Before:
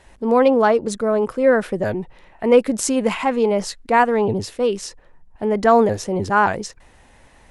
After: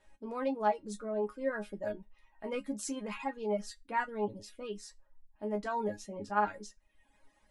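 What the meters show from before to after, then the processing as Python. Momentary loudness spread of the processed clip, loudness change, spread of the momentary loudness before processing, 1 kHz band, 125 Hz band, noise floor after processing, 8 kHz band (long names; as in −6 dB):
12 LU, −18.0 dB, 12 LU, −15.5 dB, −19.5 dB, −71 dBFS, −17.0 dB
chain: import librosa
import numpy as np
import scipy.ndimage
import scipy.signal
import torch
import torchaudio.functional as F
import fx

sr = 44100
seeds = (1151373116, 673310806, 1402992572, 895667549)

y = fx.resonator_bank(x, sr, root=56, chord='sus4', decay_s=0.2)
y = fx.dereverb_blind(y, sr, rt60_s=0.7)
y = y * 10.0 ** (-2.0 / 20.0)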